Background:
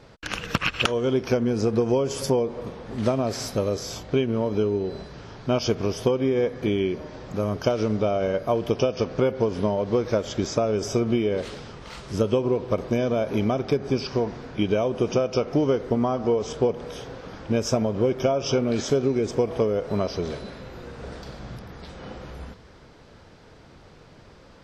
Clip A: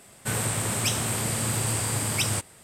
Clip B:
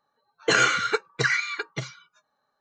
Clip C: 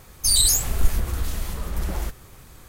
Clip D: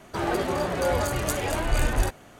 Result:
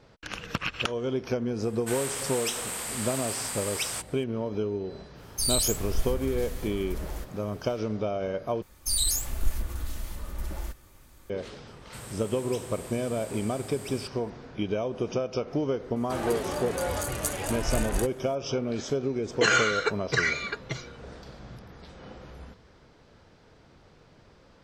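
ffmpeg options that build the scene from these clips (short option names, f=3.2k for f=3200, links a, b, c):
-filter_complex "[1:a]asplit=2[a][b];[3:a]asplit=2[c][d];[0:a]volume=-6.5dB[e];[a]highpass=720[f];[d]aecho=1:1:3.4:0.35[g];[4:a]equalizer=f=10k:t=o:w=1.2:g=9[h];[e]asplit=2[i][j];[i]atrim=end=8.624[k];[g]atrim=end=2.68,asetpts=PTS-STARTPTS,volume=-9dB[l];[j]atrim=start=11.296[m];[f]atrim=end=2.63,asetpts=PTS-STARTPTS,volume=-4.5dB,afade=t=in:d=0.004:c=hsin,afade=t=out:st=2.626:d=0.004:c=hsin,adelay=1610[n];[c]atrim=end=2.68,asetpts=PTS-STARTPTS,volume=-8.5dB,afade=t=in:d=0.1,afade=t=out:st=2.58:d=0.1,adelay=5140[o];[b]atrim=end=2.63,asetpts=PTS-STARTPTS,volume=-16.5dB,afade=t=in:d=0.004:c=hsin,afade=t=out:st=2.626:d=0.004:c=hsin,adelay=11670[p];[h]atrim=end=2.39,asetpts=PTS-STARTPTS,volume=-6dB,afade=t=in:d=0.004:c=hsin,afade=t=out:st=2.386:d=0.004:c=hsin,adelay=15960[q];[2:a]atrim=end=2.6,asetpts=PTS-STARTPTS,volume=-2.5dB,afade=t=in:d=0.004:c=hsin,afade=t=out:st=2.596:d=0.004:c=hsin,adelay=18930[r];[k][l]acrossfade=d=0.004:c1=hsin:c2=hsin[s];[s][m]acrossfade=d=0.004:c1=hsin:c2=hsin[t];[t][n][o][p][q][r]amix=inputs=6:normalize=0"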